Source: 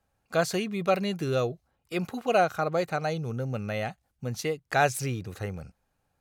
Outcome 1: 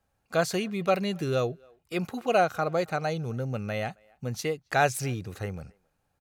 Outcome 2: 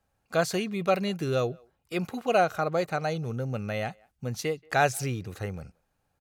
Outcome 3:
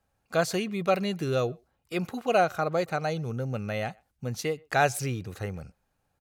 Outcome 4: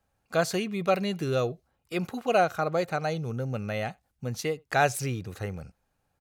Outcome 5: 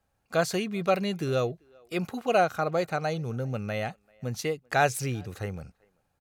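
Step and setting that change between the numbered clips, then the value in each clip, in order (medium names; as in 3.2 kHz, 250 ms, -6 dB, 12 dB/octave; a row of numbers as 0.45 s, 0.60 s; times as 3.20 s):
speakerphone echo, time: 270 ms, 180 ms, 120 ms, 80 ms, 390 ms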